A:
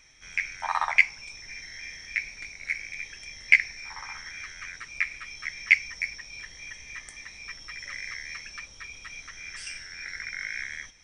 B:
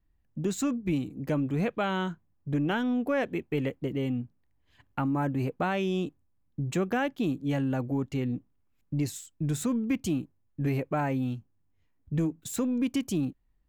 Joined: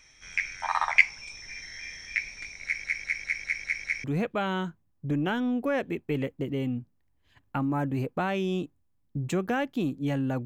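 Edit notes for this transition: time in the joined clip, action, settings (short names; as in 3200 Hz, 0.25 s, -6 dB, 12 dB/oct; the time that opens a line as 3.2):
A
2.64 stutter in place 0.20 s, 7 plays
4.04 switch to B from 1.47 s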